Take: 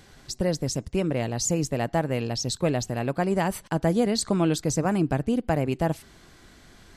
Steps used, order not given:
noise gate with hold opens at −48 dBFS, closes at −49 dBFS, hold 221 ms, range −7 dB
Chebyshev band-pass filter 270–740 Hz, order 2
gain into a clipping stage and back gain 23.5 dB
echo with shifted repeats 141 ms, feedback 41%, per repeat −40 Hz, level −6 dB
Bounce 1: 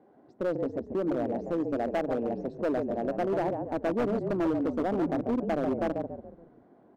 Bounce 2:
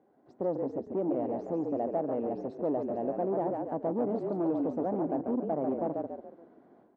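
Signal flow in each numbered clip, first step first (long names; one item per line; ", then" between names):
noise gate with hold, then Chebyshev band-pass filter, then echo with shifted repeats, then gain into a clipping stage and back
echo with shifted repeats, then gain into a clipping stage and back, then Chebyshev band-pass filter, then noise gate with hold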